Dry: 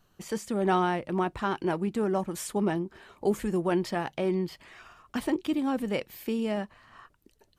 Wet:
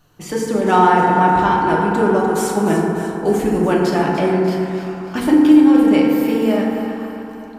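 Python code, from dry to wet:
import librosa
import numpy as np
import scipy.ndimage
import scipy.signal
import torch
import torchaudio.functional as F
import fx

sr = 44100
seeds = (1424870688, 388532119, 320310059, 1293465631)

y = fx.echo_split(x, sr, split_hz=640.0, low_ms=97, high_ms=297, feedback_pct=52, wet_db=-10.5)
y = fx.rev_fdn(y, sr, rt60_s=2.7, lf_ratio=1.2, hf_ratio=0.3, size_ms=20.0, drr_db=-3.0)
y = y * librosa.db_to_amplitude(7.5)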